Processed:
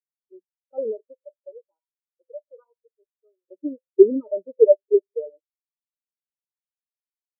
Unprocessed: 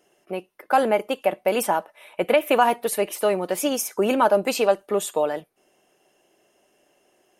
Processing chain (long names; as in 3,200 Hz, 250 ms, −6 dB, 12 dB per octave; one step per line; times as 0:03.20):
0:01.12–0:03.47: high-pass filter 530 Hz → 1,500 Hz 6 dB per octave
convolution reverb RT60 0.65 s, pre-delay 3 ms, DRR 9.5 dB
every bin expanded away from the loudest bin 4 to 1
level −6.5 dB